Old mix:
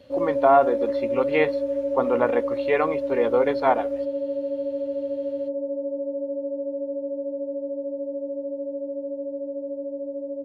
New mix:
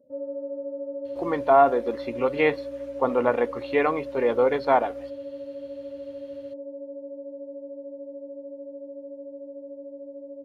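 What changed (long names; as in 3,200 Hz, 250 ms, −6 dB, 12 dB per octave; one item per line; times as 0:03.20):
speech: entry +1.05 s
background −8.5 dB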